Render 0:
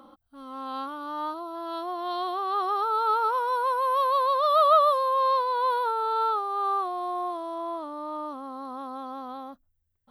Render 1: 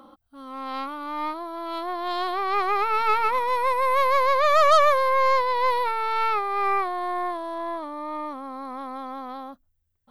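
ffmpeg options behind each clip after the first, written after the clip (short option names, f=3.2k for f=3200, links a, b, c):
-af "aeval=exprs='0.335*(cos(1*acos(clip(val(0)/0.335,-1,1)))-cos(1*PI/2))+0.0473*(cos(6*acos(clip(val(0)/0.335,-1,1)))-cos(6*PI/2))':c=same,volume=2dB"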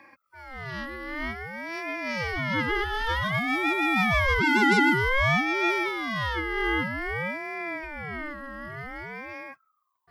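-af "asuperstop=centerf=1500:order=20:qfactor=2.7,aeval=exprs='val(0)*sin(2*PI*1100*n/s+1100*0.25/0.53*sin(2*PI*0.53*n/s))':c=same"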